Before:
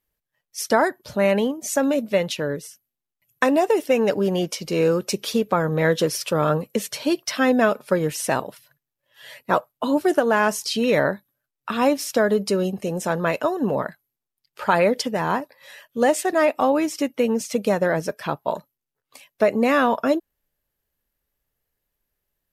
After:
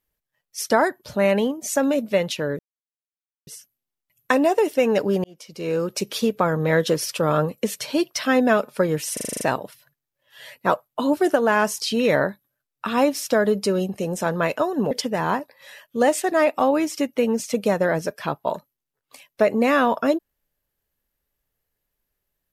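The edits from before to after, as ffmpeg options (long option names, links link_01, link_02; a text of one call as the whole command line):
ffmpeg -i in.wav -filter_complex "[0:a]asplit=11[link_01][link_02][link_03][link_04][link_05][link_06][link_07][link_08][link_09][link_10][link_11];[link_01]atrim=end=2.59,asetpts=PTS-STARTPTS,afade=type=out:start_time=2.586:duration=0.004:curve=hsin,apad=pad_dur=0.88[link_12];[link_02]atrim=start=2.59:end=4.36,asetpts=PTS-STARTPTS,afade=type=in:duration=0.004:curve=hsin,afade=type=out:start_time=1.766:duration=0.004:curve=hsin[link_13];[link_03]atrim=start=4.36:end=8.292,asetpts=PTS-STARTPTS,afade=type=in:duration=0.86[link_14];[link_04]atrim=start=8.248:end=8.292[link_15];[link_05]atrim=start=8.248:end=8.292[link_16];[link_06]atrim=start=8.248:end=8.292[link_17];[link_07]atrim=start=8.248:end=8.292[link_18];[link_08]atrim=start=8.248:end=8.292[link_19];[link_09]atrim=start=8.248:end=8.292[link_20];[link_10]atrim=start=8.248:end=13.752[link_21];[link_11]atrim=start=14.918[link_22];[link_12][link_13][link_14]concat=n=3:v=0:a=1[link_23];[link_23][link_15]acrossfade=duration=0.004:curve1=hsin:curve2=hsin[link_24];[link_24][link_16]acrossfade=duration=0.004:curve1=hsin:curve2=hsin[link_25];[link_25][link_17]acrossfade=duration=0.004:curve1=hsin:curve2=hsin[link_26];[link_26][link_18]acrossfade=duration=0.004:curve1=hsin:curve2=hsin[link_27];[link_27][link_19]acrossfade=duration=0.004:curve1=hsin:curve2=hsin[link_28];[link_28][link_20]acrossfade=duration=0.004:curve1=hsin:curve2=hsin[link_29];[link_29][link_21]acrossfade=duration=0.004:curve1=hsin:curve2=hsin[link_30];[link_30][link_22]acrossfade=duration=0.004:curve1=hsin:curve2=hsin" out.wav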